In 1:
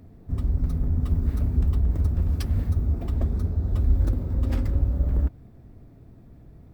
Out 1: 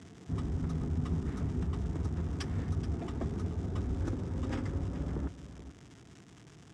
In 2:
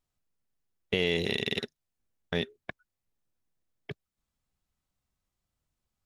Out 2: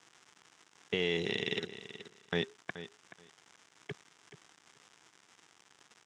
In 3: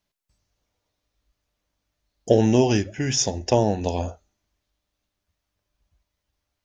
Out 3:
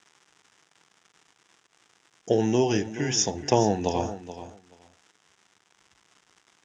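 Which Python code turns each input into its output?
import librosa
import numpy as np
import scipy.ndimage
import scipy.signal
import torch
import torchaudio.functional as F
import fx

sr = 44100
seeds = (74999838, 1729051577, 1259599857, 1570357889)

y = fx.rider(x, sr, range_db=4, speed_s=2.0)
y = fx.dmg_crackle(y, sr, seeds[0], per_s=320.0, level_db=-41.0)
y = fx.cabinet(y, sr, low_hz=150.0, low_slope=12, high_hz=7500.0, hz=(240.0, 580.0, 2500.0, 4300.0), db=(-5, -8, -3, -8))
y = fx.echo_feedback(y, sr, ms=428, feedback_pct=16, wet_db=-13.0)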